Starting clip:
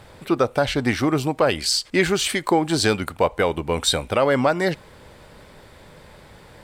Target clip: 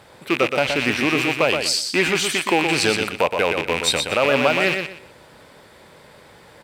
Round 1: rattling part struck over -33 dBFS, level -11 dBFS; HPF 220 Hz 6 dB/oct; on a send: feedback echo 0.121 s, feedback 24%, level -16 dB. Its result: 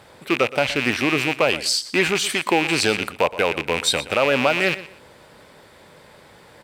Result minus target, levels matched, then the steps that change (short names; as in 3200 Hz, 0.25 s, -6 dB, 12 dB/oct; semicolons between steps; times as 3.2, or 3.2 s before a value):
echo-to-direct -10 dB
change: feedback echo 0.121 s, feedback 24%, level -6 dB